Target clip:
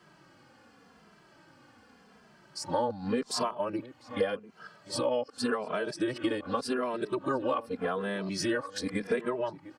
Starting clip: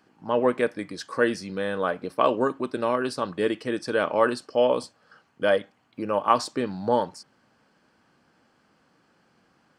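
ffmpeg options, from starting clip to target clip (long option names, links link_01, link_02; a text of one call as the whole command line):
ffmpeg -i in.wav -filter_complex "[0:a]areverse,acompressor=threshold=-32dB:ratio=12,asplit=2[link_01][link_02];[link_02]adelay=699.7,volume=-16dB,highshelf=frequency=4000:gain=-15.7[link_03];[link_01][link_03]amix=inputs=2:normalize=0,asplit=2[link_04][link_05];[link_05]adelay=2.6,afreqshift=-0.86[link_06];[link_04][link_06]amix=inputs=2:normalize=1,volume=8.5dB" out.wav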